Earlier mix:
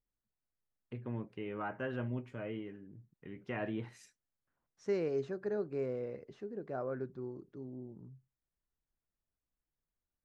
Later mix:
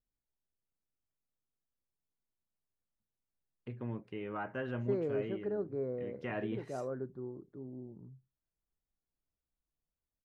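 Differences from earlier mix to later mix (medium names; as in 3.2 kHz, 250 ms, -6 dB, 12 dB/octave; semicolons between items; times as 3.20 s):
first voice: entry +2.75 s; second voice: add boxcar filter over 16 samples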